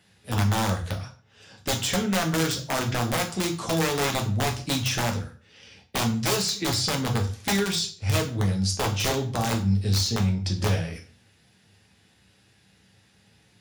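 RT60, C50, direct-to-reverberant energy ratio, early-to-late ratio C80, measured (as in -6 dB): 0.45 s, 12.0 dB, 2.0 dB, 16.5 dB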